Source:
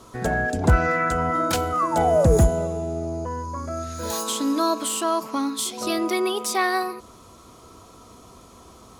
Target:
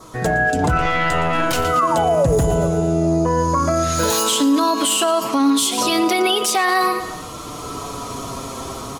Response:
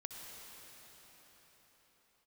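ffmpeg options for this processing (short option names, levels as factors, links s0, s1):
-filter_complex "[0:a]bandreject=f=50:t=h:w=6,bandreject=f=100:t=h:w=6,bandreject=f=150:t=h:w=6,bandreject=f=200:t=h:w=6,bandreject=f=250:t=h:w=6,bandreject=f=300:t=h:w=6,bandreject=f=350:t=h:w=6,bandreject=f=400:t=h:w=6,bandreject=f=450:t=h:w=6,asplit=2[s0][s1];[s1]aecho=0:1:115|230|345|460:0.178|0.08|0.036|0.0162[s2];[s0][s2]amix=inputs=2:normalize=0,dynaudnorm=f=250:g=5:m=3.98,asettb=1/sr,asplit=3[s3][s4][s5];[s3]atrim=end=0.774[s6];[s4]atrim=start=0.77:end=1.65,asetpts=PTS-STARTPTS,afade=t=in:d=0.004:c=qsin,afade=t=out:st=0.876:d=0.004:c=qsin,aeval=exprs='(tanh(3.98*val(0)+0.6)-tanh(0.6))/3.98':c=same[s7];[s5]atrim=start=1.646[s8];[s6][s7]acrossfade=d=0.004:c1=hsin:c2=qsin[s9];[s9][s8]acrossfade=d=0.004:c1=qsin:c2=hsin,flanger=delay=6.3:depth=1.2:regen=32:speed=0.29:shape=triangular,asplit=2[s10][s11];[s11]acompressor=threshold=0.0398:ratio=6,volume=1.12[s12];[s10][s12]amix=inputs=2:normalize=0,adynamicequalizer=threshold=0.00708:dfrequency=2900:dqfactor=4.9:tfrequency=2900:tqfactor=4.9:attack=5:release=100:ratio=0.375:range=3.5:mode=boostabove:tftype=bell,alimiter=level_in=3.98:limit=0.891:release=50:level=0:latency=1,volume=0.398"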